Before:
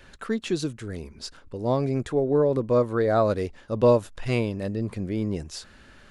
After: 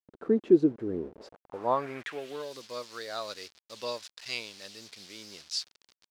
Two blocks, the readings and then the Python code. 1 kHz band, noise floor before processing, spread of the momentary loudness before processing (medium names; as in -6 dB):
-5.0 dB, -52 dBFS, 15 LU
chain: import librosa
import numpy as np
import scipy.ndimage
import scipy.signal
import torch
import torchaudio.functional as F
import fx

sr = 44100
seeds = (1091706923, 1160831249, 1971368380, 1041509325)

y = fx.delta_hold(x, sr, step_db=-40.5)
y = fx.filter_sweep_bandpass(y, sr, from_hz=350.0, to_hz=4700.0, start_s=0.99, end_s=2.52, q=2.3)
y = y * librosa.db_to_amplitude(8.0)